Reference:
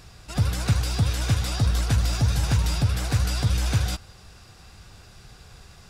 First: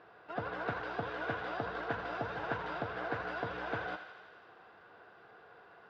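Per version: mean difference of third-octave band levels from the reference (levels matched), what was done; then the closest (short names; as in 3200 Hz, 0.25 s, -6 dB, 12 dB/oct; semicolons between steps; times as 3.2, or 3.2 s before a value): 11.0 dB: speaker cabinet 310–2700 Hz, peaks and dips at 330 Hz +5 dB, 460 Hz +9 dB, 690 Hz +8 dB, 1000 Hz +6 dB, 1500 Hz +8 dB, 2400 Hz -6 dB; thinning echo 84 ms, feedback 76%, high-pass 720 Hz, level -8.5 dB; gain -8 dB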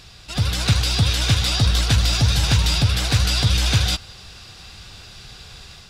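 2.5 dB: bell 3600 Hz +10.5 dB 1.4 oct; AGC gain up to 4 dB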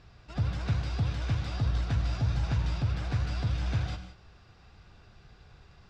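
5.0 dB: air absorption 180 m; non-linear reverb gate 0.21 s flat, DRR 7 dB; gain -7 dB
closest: second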